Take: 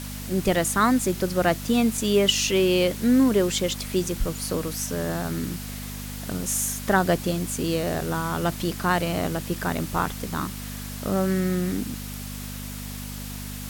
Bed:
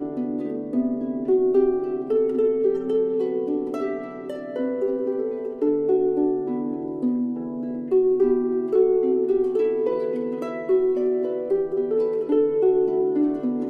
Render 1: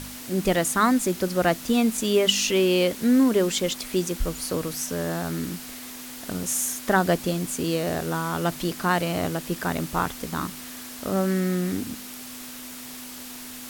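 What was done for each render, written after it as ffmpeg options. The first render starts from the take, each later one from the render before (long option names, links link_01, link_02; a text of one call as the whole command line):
ffmpeg -i in.wav -af "bandreject=frequency=50:width_type=h:width=4,bandreject=frequency=100:width_type=h:width=4,bandreject=frequency=150:width_type=h:width=4,bandreject=frequency=200:width_type=h:width=4" out.wav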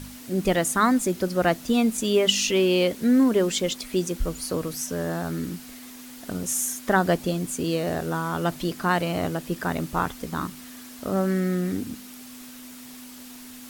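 ffmpeg -i in.wav -af "afftdn=noise_reduction=6:noise_floor=-39" out.wav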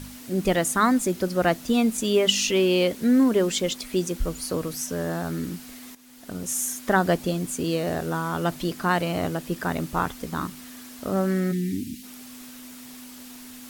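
ffmpeg -i in.wav -filter_complex "[0:a]asplit=3[link_01][link_02][link_03];[link_01]afade=type=out:start_time=11.51:duration=0.02[link_04];[link_02]asuperstop=centerf=840:order=8:qfactor=0.51,afade=type=in:start_time=11.51:duration=0.02,afade=type=out:start_time=12.02:duration=0.02[link_05];[link_03]afade=type=in:start_time=12.02:duration=0.02[link_06];[link_04][link_05][link_06]amix=inputs=3:normalize=0,asplit=2[link_07][link_08];[link_07]atrim=end=5.95,asetpts=PTS-STARTPTS,afade=type=out:start_time=5.946:duration=0.004:curve=hsin:silence=0.211349[link_09];[link_08]atrim=start=5.95,asetpts=PTS-STARTPTS,afade=type=in:duration=0.96:curve=qsin:silence=0.211349[link_10];[link_09][link_10]concat=n=2:v=0:a=1" out.wav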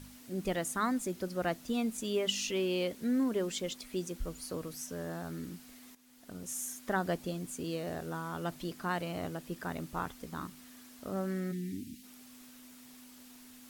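ffmpeg -i in.wav -af "volume=-11.5dB" out.wav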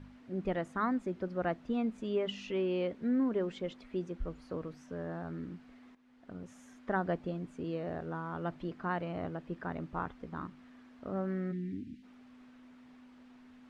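ffmpeg -i in.wav -af "lowpass=1900" out.wav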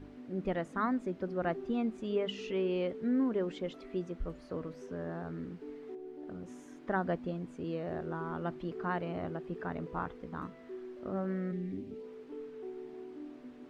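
ffmpeg -i in.wav -i bed.wav -filter_complex "[1:a]volume=-25dB[link_01];[0:a][link_01]amix=inputs=2:normalize=0" out.wav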